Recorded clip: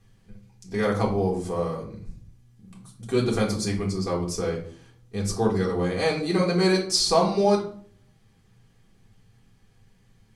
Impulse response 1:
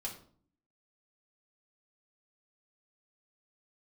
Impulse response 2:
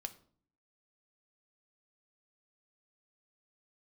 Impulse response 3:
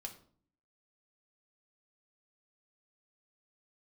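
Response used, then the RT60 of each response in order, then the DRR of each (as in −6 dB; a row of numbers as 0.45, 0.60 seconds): 1; 0.50, 0.50, 0.50 seconds; −3.5, 7.5, 2.0 decibels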